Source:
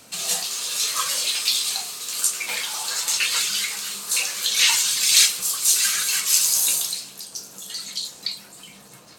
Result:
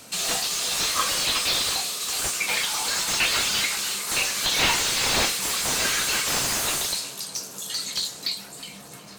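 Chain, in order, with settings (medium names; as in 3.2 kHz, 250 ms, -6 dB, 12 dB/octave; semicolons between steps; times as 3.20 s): filtered feedback delay 364 ms, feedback 75%, low-pass 1.1 kHz, level -6.5 dB; slew-rate limiter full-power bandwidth 270 Hz; trim +3 dB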